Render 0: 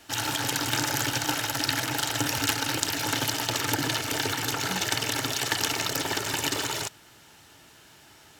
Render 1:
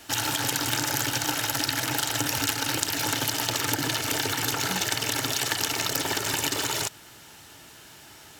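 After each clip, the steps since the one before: compressor 3:1, threshold -29 dBFS, peak gain reduction 7.5 dB; high shelf 7500 Hz +4.5 dB; gain +4 dB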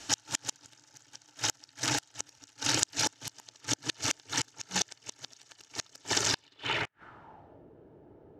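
flipped gate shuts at -12 dBFS, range -34 dB; low-pass sweep 6400 Hz -> 470 Hz, 6.24–7.65; gain -2.5 dB

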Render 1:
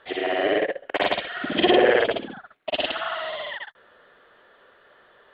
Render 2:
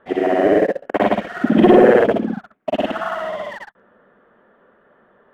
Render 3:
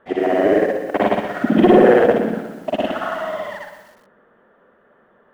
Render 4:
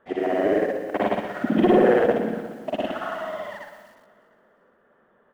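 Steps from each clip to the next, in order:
LPF 1400 Hz 12 dB/oct; bell 210 Hz +13.5 dB 0.79 oct; sample leveller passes 1; gain +3 dB
on a send at -10.5 dB: reverb RT60 1.2 s, pre-delay 58 ms; on the sum: lo-fi delay 0.122 s, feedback 55%, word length 7-bit, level -11 dB; gain -1 dB
feedback echo 0.351 s, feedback 42%, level -20 dB; gain -6 dB

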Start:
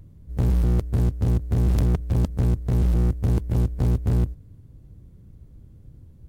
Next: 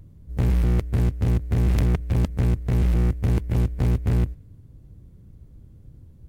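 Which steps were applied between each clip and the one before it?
dynamic EQ 2200 Hz, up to +8 dB, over -58 dBFS, Q 1.3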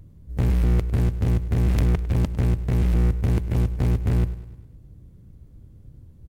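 feedback echo 0.102 s, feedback 54%, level -16 dB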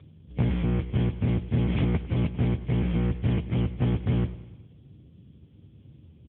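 nonlinear frequency compression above 2100 Hz 4:1; doubler 13 ms -13 dB; AMR-NB 10.2 kbps 8000 Hz

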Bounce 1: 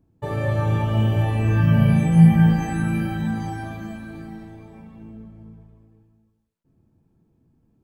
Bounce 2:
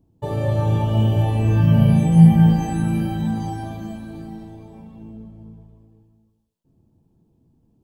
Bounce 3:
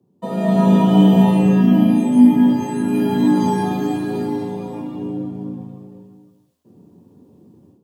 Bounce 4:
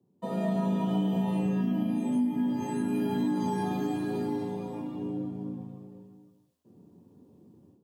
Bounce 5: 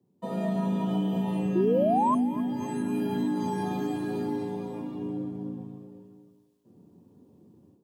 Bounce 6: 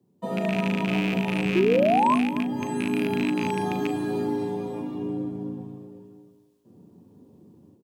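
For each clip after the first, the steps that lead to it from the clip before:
band shelf 1700 Hz -8.5 dB 1.2 oct; gain +2 dB
AGC gain up to 13.5 dB; frequency shift +81 Hz; gain -1 dB
compressor 6:1, threshold -17 dBFS, peak gain reduction 11.5 dB; gain -8 dB
painted sound rise, 1.55–2.15, 340–1100 Hz -24 dBFS; thinning echo 0.256 s, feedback 42%, high-pass 170 Hz, level -16.5 dB
rattling part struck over -29 dBFS, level -22 dBFS; doubler 39 ms -12.5 dB; gain +3.5 dB

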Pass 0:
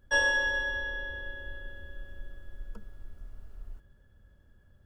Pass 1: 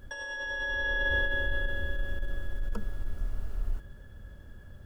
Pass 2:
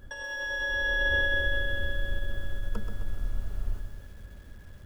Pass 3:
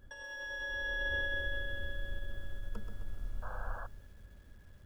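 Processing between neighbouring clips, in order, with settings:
negative-ratio compressor -38 dBFS, ratio -1; gain +8.5 dB
lo-fi delay 0.13 s, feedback 55%, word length 9-bit, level -7.5 dB
painted sound noise, 3.42–3.87, 480–1700 Hz -37 dBFS; gain -9 dB

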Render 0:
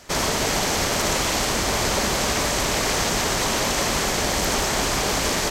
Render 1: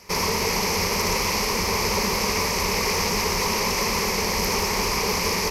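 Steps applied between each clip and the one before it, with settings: ripple EQ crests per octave 0.84, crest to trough 12 dB; gain -3 dB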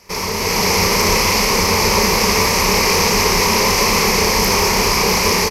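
AGC gain up to 9.5 dB; doubler 32 ms -6 dB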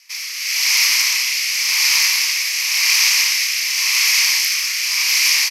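rotary speaker horn 0.9 Hz; ladder high-pass 1800 Hz, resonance 25%; gain +9 dB

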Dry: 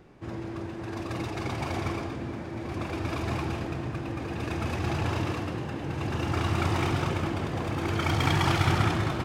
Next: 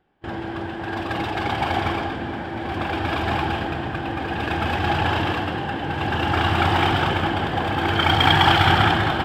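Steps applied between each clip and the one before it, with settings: gate with hold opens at -29 dBFS; thirty-one-band EQ 125 Hz -6 dB, 800 Hz +11 dB, 1600 Hz +10 dB, 3150 Hz +11 dB, 6300 Hz -10 dB, 10000 Hz -9 dB; gain +5.5 dB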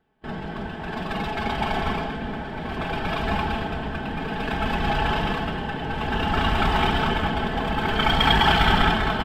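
octaver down 1 oct, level +1 dB; comb 4.6 ms, depth 69%; gain -4 dB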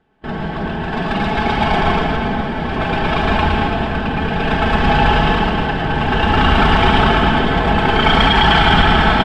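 air absorption 57 m; on a send: reverse bouncing-ball echo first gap 0.11 s, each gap 1.5×, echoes 5; on the sum: maximiser +9 dB; gain -1 dB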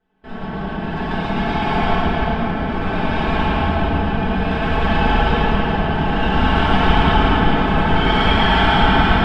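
reverb RT60 3.4 s, pre-delay 5 ms, DRR -10 dB; gain -14 dB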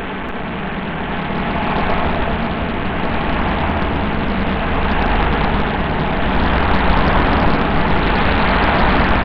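delta modulation 16 kbps, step -17.5 dBFS; on a send: echo 0.289 s -8.5 dB; on the sum: Doppler distortion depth 0.86 ms

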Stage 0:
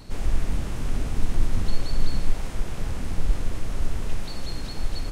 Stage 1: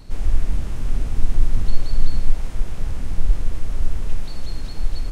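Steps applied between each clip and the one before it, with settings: low shelf 75 Hz +9 dB; gain -2.5 dB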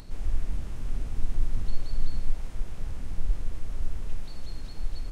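upward compressor, threshold -29 dBFS; gain -9 dB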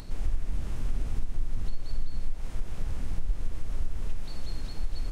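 compressor, threshold -23 dBFS, peak gain reduction 9.5 dB; gain +3 dB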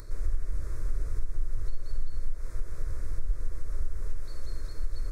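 fixed phaser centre 800 Hz, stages 6

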